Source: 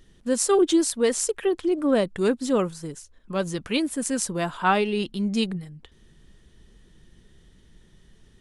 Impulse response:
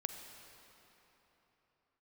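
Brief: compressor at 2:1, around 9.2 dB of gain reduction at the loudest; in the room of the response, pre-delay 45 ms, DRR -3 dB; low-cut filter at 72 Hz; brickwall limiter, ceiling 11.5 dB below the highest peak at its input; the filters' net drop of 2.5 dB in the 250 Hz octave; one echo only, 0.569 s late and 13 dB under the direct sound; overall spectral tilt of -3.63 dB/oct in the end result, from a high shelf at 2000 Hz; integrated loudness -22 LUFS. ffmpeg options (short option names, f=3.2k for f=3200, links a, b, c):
-filter_complex "[0:a]highpass=72,equalizer=f=250:t=o:g=-3.5,highshelf=f=2k:g=4,acompressor=threshold=-34dB:ratio=2,alimiter=limit=-23dB:level=0:latency=1,aecho=1:1:569:0.224,asplit=2[a][b];[1:a]atrim=start_sample=2205,adelay=45[c];[b][c]afir=irnorm=-1:irlink=0,volume=3.5dB[d];[a][d]amix=inputs=2:normalize=0,volume=7dB"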